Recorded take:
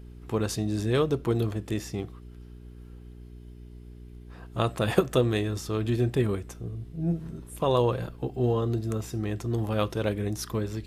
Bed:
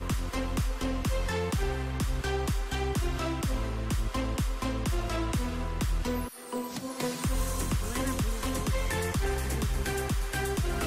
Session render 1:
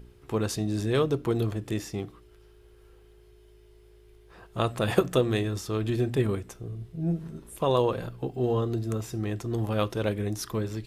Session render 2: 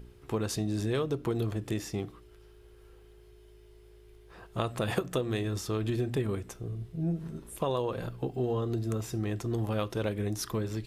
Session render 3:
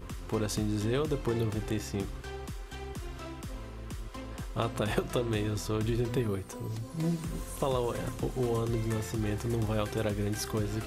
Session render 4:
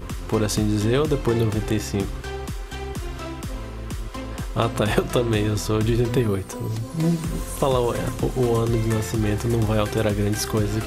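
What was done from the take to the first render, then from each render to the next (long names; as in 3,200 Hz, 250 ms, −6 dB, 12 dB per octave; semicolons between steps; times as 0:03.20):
hum removal 60 Hz, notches 5
downward compressor 4 to 1, threshold −27 dBFS, peak gain reduction 10 dB
mix in bed −10.5 dB
level +9.5 dB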